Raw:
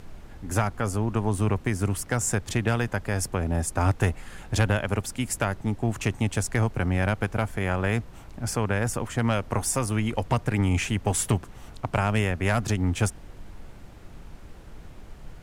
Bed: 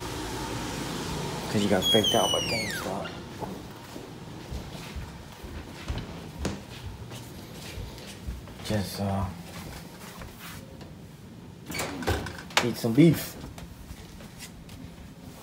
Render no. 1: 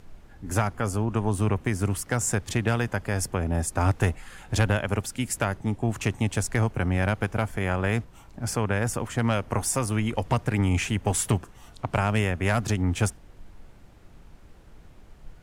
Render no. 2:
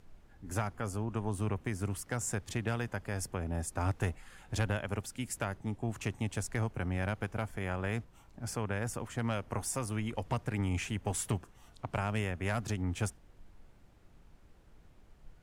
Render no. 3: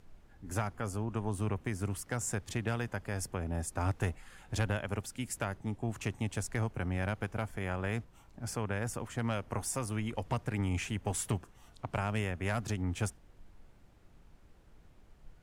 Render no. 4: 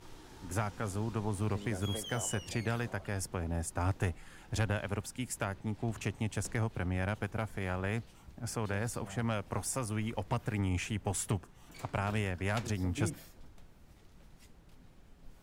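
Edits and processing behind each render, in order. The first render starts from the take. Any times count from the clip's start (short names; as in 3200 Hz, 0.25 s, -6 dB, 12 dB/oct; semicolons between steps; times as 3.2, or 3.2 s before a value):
noise print and reduce 6 dB
gain -9.5 dB
nothing audible
add bed -20 dB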